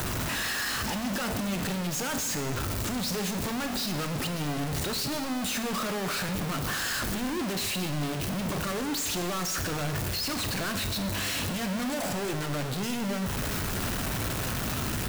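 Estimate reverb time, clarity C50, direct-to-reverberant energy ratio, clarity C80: 1.4 s, 9.0 dB, 6.5 dB, 10.5 dB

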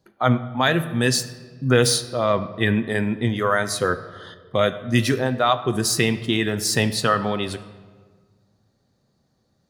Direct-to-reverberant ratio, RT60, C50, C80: 9.5 dB, 1.6 s, 13.5 dB, 15.0 dB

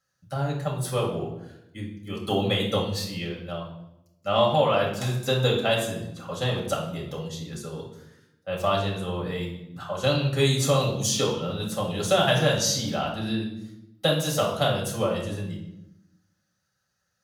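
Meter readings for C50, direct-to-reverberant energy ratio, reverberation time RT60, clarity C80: 5.5 dB, -2.5 dB, 0.90 s, 9.0 dB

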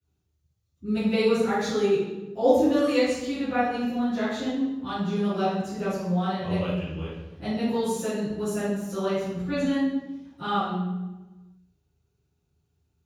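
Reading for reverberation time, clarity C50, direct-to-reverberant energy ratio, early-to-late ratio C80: 1.1 s, -1.5 dB, -16.0 dB, 2.5 dB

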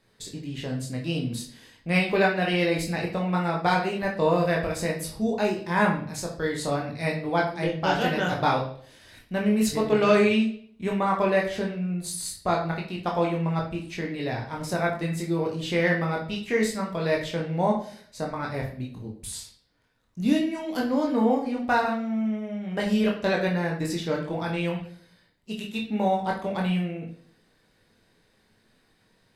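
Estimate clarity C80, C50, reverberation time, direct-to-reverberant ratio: 11.5 dB, 7.0 dB, 0.55 s, -1.5 dB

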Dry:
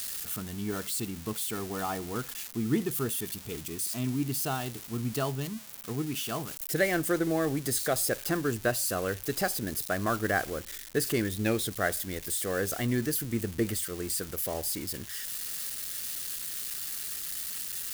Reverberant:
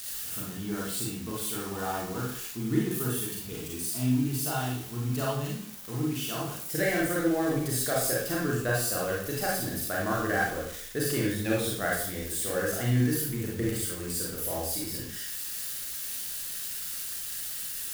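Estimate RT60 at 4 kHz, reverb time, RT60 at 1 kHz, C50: 0.50 s, 0.55 s, 0.60 s, 0.5 dB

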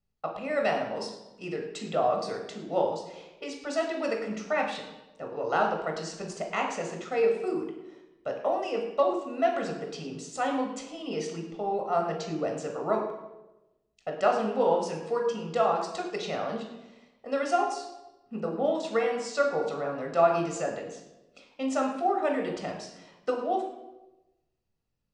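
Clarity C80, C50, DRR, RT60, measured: 8.0 dB, 5.5 dB, 1.5 dB, 1.0 s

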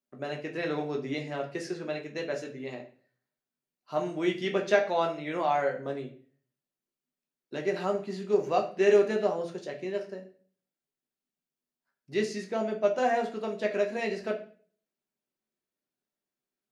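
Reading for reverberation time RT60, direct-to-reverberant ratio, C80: 0.45 s, 1.0 dB, 15.0 dB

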